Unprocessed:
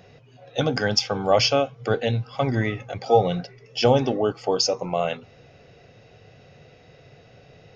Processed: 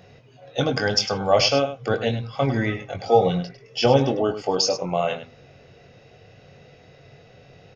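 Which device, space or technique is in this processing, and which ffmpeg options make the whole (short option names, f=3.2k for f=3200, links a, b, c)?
slapback doubling: -filter_complex "[0:a]asplit=3[a][b][c];[b]adelay=22,volume=-7.5dB[d];[c]adelay=102,volume=-11.5dB[e];[a][d][e]amix=inputs=3:normalize=0"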